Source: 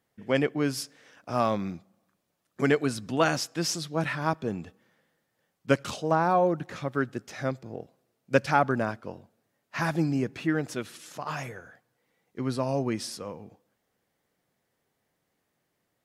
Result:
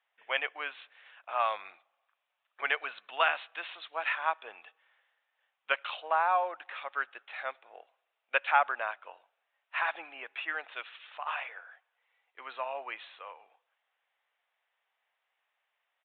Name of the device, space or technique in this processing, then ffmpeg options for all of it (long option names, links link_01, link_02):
musical greeting card: -af "aresample=8000,aresample=44100,highpass=frequency=760:width=0.5412,highpass=frequency=760:width=1.3066,equalizer=frequency=2600:width_type=o:width=0.42:gain=5"